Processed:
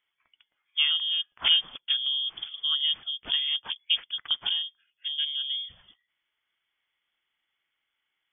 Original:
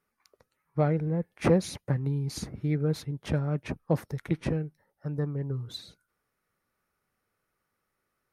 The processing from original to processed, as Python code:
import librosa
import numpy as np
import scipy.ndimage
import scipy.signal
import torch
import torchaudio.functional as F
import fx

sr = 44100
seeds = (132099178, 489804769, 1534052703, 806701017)

y = fx.freq_invert(x, sr, carrier_hz=3400)